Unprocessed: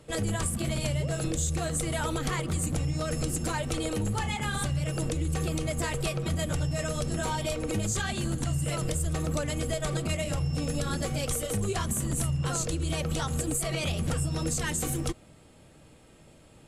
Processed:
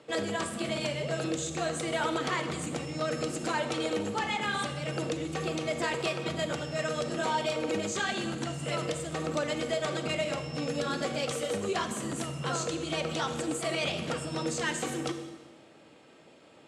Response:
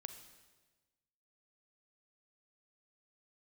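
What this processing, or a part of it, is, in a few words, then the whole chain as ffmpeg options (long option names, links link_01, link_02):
supermarket ceiling speaker: -filter_complex "[0:a]highpass=280,lowpass=5000[link_01];[1:a]atrim=start_sample=2205[link_02];[link_01][link_02]afir=irnorm=-1:irlink=0,volume=7dB"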